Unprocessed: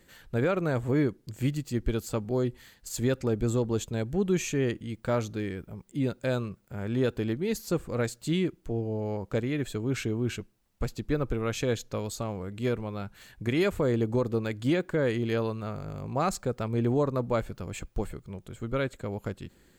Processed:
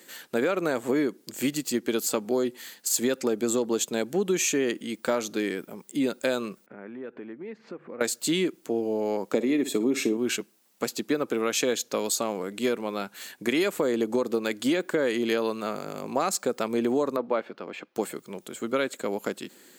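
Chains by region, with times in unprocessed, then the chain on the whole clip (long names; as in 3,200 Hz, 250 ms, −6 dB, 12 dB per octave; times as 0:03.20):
0:06.66–0:08.01: Chebyshev low-pass filter 2,100 Hz, order 3 + mains-hum notches 50/100/150 Hz + downward compressor 5 to 1, threshold −42 dBFS
0:09.34–0:10.17: parametric band 250 Hz +8.5 dB 1.8 octaves + notch comb filter 1,500 Hz + flutter between parallel walls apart 9.8 metres, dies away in 0.24 s
0:17.16–0:17.96: de-essing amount 95% + high-pass filter 340 Hz 6 dB per octave + high-frequency loss of the air 320 metres
whole clip: high-pass filter 230 Hz 24 dB per octave; high-shelf EQ 3,900 Hz +8.5 dB; downward compressor, threshold −28 dBFS; level +7 dB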